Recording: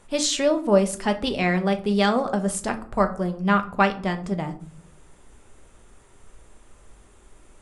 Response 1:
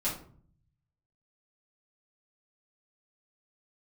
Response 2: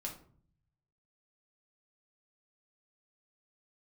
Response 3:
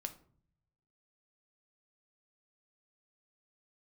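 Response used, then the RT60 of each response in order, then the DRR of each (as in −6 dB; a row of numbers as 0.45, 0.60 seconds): 3; 0.50, 0.50, 0.55 seconds; −9.5, −1.0, 7.0 decibels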